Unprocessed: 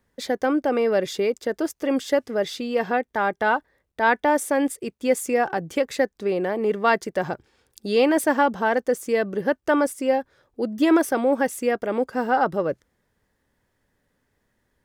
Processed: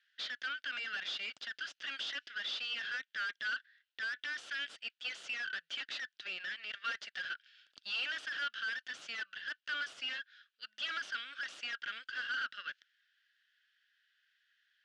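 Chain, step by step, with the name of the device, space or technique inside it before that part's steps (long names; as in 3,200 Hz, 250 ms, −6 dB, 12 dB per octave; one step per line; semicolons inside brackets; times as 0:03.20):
elliptic high-pass filter 1,600 Hz, stop band 50 dB
guitar amplifier (tube saturation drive 43 dB, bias 0.55; bass and treble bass −12 dB, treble +7 dB; loudspeaker in its box 110–4,100 Hz, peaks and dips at 280 Hz +3 dB, 580 Hz +4 dB, 950 Hz −6 dB, 1,400 Hz +8 dB, 2,100 Hz −5 dB, 3,000 Hz +8 dB)
level +4 dB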